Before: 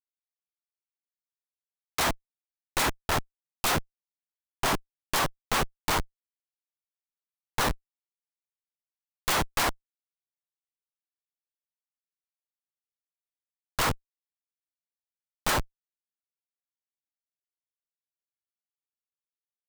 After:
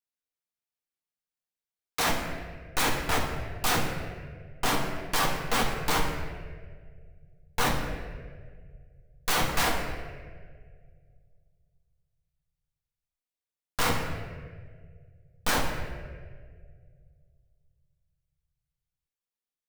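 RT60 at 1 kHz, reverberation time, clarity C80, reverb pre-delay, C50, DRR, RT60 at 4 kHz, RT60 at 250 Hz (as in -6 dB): 1.5 s, 1.9 s, 5.0 dB, 4 ms, 3.5 dB, -1.0 dB, 1.1 s, 2.1 s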